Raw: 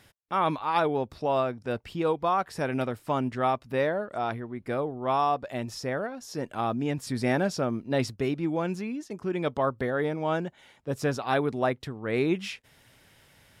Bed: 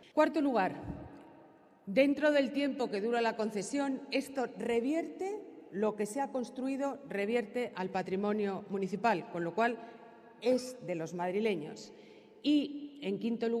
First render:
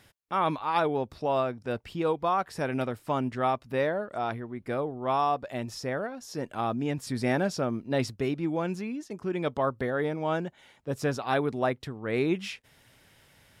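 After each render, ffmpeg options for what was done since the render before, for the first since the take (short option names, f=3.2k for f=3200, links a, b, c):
-af "volume=-1dB"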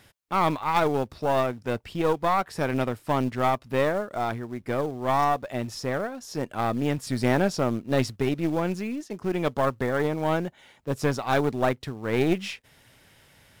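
-filter_complex "[0:a]aeval=exprs='0.211*(cos(1*acos(clip(val(0)/0.211,-1,1)))-cos(1*PI/2))+0.0266*(cos(4*acos(clip(val(0)/0.211,-1,1)))-cos(4*PI/2))':c=same,asplit=2[a][b];[b]acrusher=bits=3:mode=log:mix=0:aa=0.000001,volume=-8dB[c];[a][c]amix=inputs=2:normalize=0"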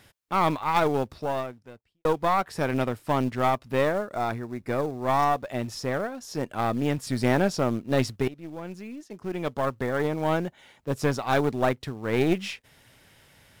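-filter_complex "[0:a]asettb=1/sr,asplit=3[a][b][c];[a]atrim=end=4.044[d];[b]atrim=start=4.04:end=5.1,asetpts=PTS-STARTPTS,afade=t=in:d=0.004:c=qsin,afade=t=out:st=1.056:d=0.004:c=qsin,bandreject=f=3.1k:w=8.5[e];[c]atrim=start=5.096[f];[d][e]acrossfade=d=0.004:c1=hsin:c2=qsin[g];[g][f]acrossfade=d=0.004:c1=qsin:c2=hsin,asplit=3[h][i][j];[h]atrim=end=2.05,asetpts=PTS-STARTPTS,afade=t=out:st=1.09:d=0.96:c=qua[k];[i]atrim=start=2.05:end=8.28,asetpts=PTS-STARTPTS,afade=t=in:d=0.004:c=hsin,afade=t=out:st=6.226:d=0.004:c=hsin:silence=0.133352[l];[j]atrim=start=8.28,asetpts=PTS-STARTPTS,afade=t=in:d=1.99:silence=0.133352[m];[k][l][m]concat=n=3:v=0:a=1"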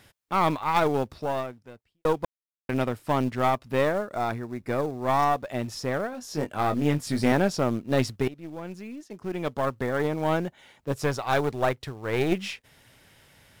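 -filter_complex "[0:a]asettb=1/sr,asplit=3[a][b][c];[a]atrim=end=6.114[d];[b]atrim=start=6.11:end=7.32,asetpts=PTS-STARTPTS,afade=t=in:d=0.004:c=qsin,afade=t=out:st=1.206:d=0.004:c=qsin,asplit=2[e][f];[f]adelay=20,volume=-6dB[g];[e][g]amix=inputs=2:normalize=0,atrim=end_sample=53361[h];[c]atrim=start=7.316[i];[d][h]acrossfade=d=0.004:c1=hsin:c2=qsin[j];[j][i]acrossfade=d=0.004:c1=qsin:c2=hsin,asettb=1/sr,asplit=3[k][l][m];[k]atrim=end=10.924[n];[l]atrim=start=10.92:end=12.32,asetpts=PTS-STARTPTS,afade=t=in:d=0.004:c=qsin,afade=t=out:st=1.396:d=0.004:c=qsin,equalizer=f=230:t=o:w=0.75:g=-8[o];[m]atrim=start=12.316[p];[n][o]acrossfade=d=0.004:c1=hsin:c2=qsin[q];[q][p]acrossfade=d=0.004:c1=qsin:c2=hsin,asplit=3[r][s][t];[r]atrim=end=2.25,asetpts=PTS-STARTPTS,afade=t=out:st=2.246:d=0.004:c=hsin[u];[s]atrim=start=2.25:end=2.69,asetpts=PTS-STARTPTS,volume=0[v];[t]atrim=start=2.69,asetpts=PTS-STARTPTS,afade=t=in:d=0.004:c=hsin[w];[u][v][w]concat=n=3:v=0:a=1"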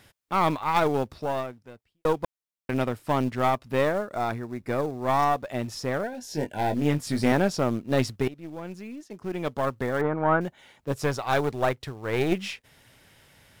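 -filter_complex "[0:a]asettb=1/sr,asplit=3[a][b][c];[a]atrim=end=6.034[d];[b]atrim=start=6.03:end=6.76,asetpts=PTS-STARTPTS,afade=t=in:d=0.004:c=qsin,afade=t=out:st=0.726:d=0.004:c=qsin,asuperstop=centerf=1200:order=12:qfactor=3[e];[c]atrim=start=6.756[f];[d][e]acrossfade=d=0.004:c1=hsin:c2=qsin[g];[g][f]acrossfade=d=0.004:c1=qsin:c2=hsin,asettb=1/sr,asplit=3[h][i][j];[h]atrim=end=10.014[k];[i]atrim=start=10.01:end=10.41,asetpts=PTS-STARTPTS,afade=t=in:d=0.004:c=qsin,afade=t=out:st=0.396:d=0.004:c=qsin,lowpass=f=1.4k:t=q:w=2.7[l];[j]atrim=start=10.406[m];[k][l]acrossfade=d=0.004:c1=hsin:c2=qsin[n];[n][m]acrossfade=d=0.004:c1=qsin:c2=hsin"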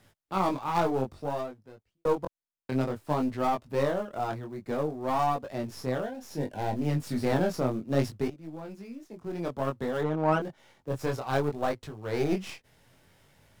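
-filter_complex "[0:a]flanger=delay=19:depth=4.5:speed=0.59,acrossover=split=160|1200[a][b][c];[c]aeval=exprs='max(val(0),0)':c=same[d];[a][b][d]amix=inputs=3:normalize=0"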